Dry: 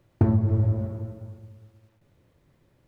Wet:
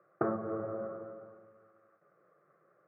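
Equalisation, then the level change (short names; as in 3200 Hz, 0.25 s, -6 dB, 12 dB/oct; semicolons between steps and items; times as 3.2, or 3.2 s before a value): steep high-pass 180 Hz 36 dB/oct; synth low-pass 1200 Hz, resonance Q 6.4; fixed phaser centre 940 Hz, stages 6; 0.0 dB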